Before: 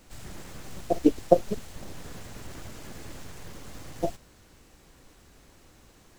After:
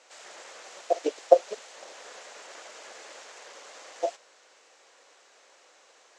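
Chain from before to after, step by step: Chebyshev band-pass 510–7200 Hz, order 3; trim +3 dB

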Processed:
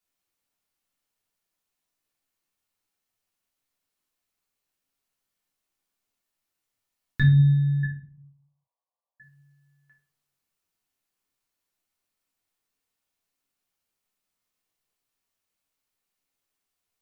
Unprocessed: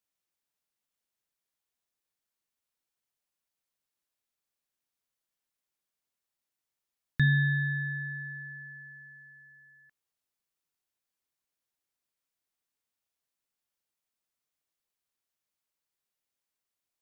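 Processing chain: 7.83–9.20 s: brick-wall FIR band-pass 470–1200 Hz; reverberation RT60 0.45 s, pre-delay 3 ms, DRR -4 dB

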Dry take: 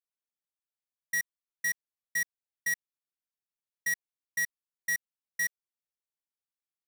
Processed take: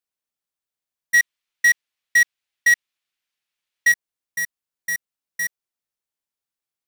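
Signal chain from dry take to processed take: 1.14–3.92 s: peaking EQ 2.7 kHz +13 dB 2.2 oct; trim +5 dB

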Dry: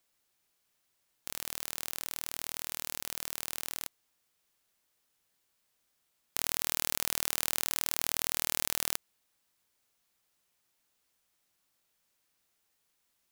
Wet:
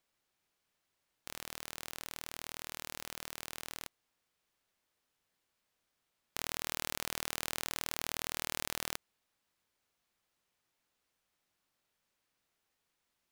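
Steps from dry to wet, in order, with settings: treble shelf 5.5 kHz -9.5 dB; trim -1 dB

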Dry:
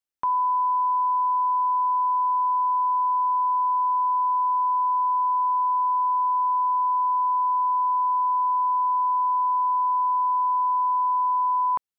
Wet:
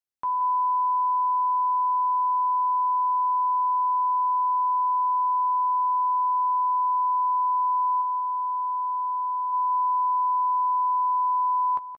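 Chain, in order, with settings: 8.01–9.53 s: dynamic bell 970 Hz, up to -4 dB, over -33 dBFS, Q 1.1; doubling 14 ms -10.5 dB; delay 177 ms -12 dB; trim -5 dB

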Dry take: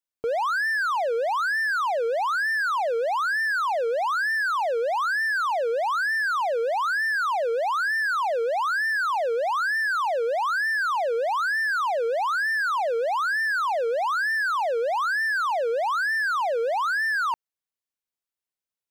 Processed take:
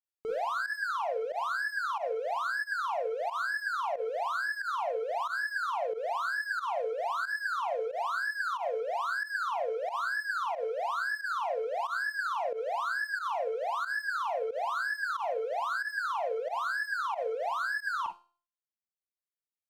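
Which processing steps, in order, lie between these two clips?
Schroeder reverb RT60 0.33 s, combs from 32 ms, DRR 1 dB; reverb removal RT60 1.4 s; feedback comb 360 Hz, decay 0.44 s, harmonics all, mix 60%; speed mistake 25 fps video run at 24 fps; volume shaper 91 bpm, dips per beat 1, -15 dB, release 85 ms; trim -2 dB

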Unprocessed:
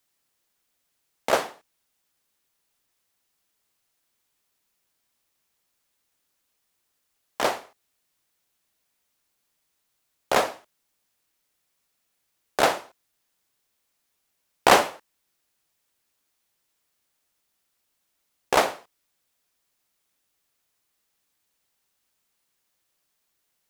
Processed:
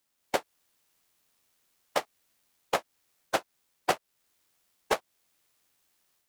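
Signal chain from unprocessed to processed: time stretch by phase-locked vocoder 0.51×; level rider gain up to 6.5 dB; granular stretch 0.52×, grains 23 ms; compression 2:1, threshold -27 dBFS, peak gain reduction 8 dB

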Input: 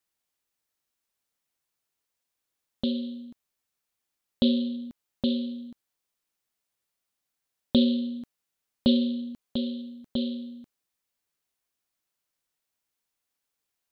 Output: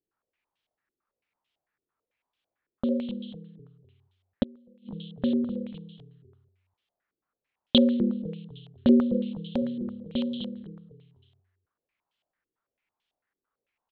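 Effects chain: frequency-shifting echo 252 ms, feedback 38%, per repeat -37 Hz, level -11 dB; 4.43–4.89 s: inverted gate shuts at -24 dBFS, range -30 dB; step-sequenced low-pass 9 Hz 380–3200 Hz

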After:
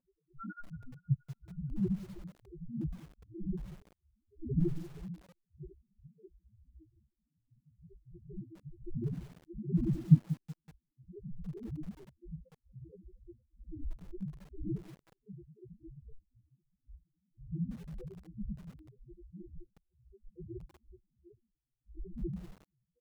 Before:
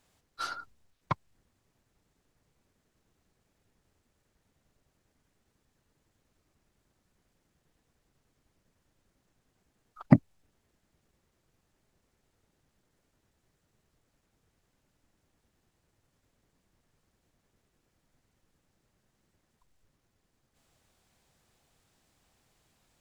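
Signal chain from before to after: wind noise 560 Hz -43 dBFS; treble shelf 3.9 kHz -7.5 dB; static phaser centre 2.2 kHz, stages 4; level rider gain up to 13.5 dB; loudest bins only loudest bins 1; feedback echo behind a band-pass 235 ms, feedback 67%, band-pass 1.4 kHz, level -15.5 dB; spectral noise reduction 24 dB; tilt shelf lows +4.5 dB, about 1.1 kHz; comb 5.4 ms, depth 86%; bit-crushed delay 188 ms, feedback 35%, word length 7-bit, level -14 dB; trim -2.5 dB

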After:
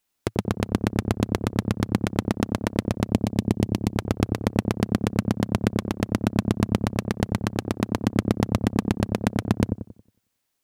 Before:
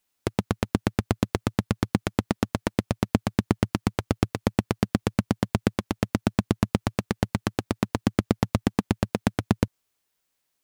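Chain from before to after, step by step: 3.04–3.94 s: peaking EQ 1.4 kHz -13 dB 0.67 oct; feedback echo behind a low-pass 91 ms, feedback 35%, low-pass 530 Hz, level -3 dB

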